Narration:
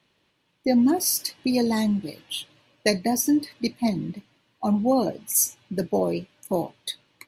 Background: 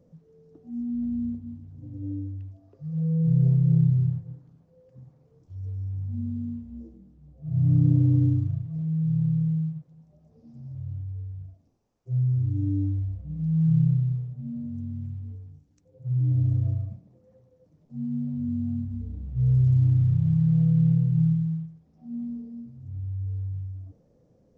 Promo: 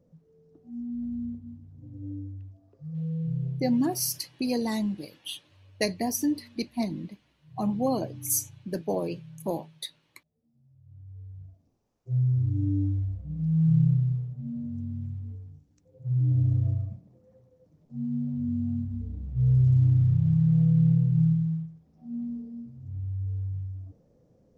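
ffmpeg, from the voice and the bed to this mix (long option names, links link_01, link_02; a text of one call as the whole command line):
ffmpeg -i stem1.wav -i stem2.wav -filter_complex "[0:a]adelay=2950,volume=-5.5dB[link_01];[1:a]volume=17dB,afade=type=out:start_time=2.9:duration=0.91:silence=0.133352,afade=type=in:start_time=10.84:duration=1.07:silence=0.0841395[link_02];[link_01][link_02]amix=inputs=2:normalize=0" out.wav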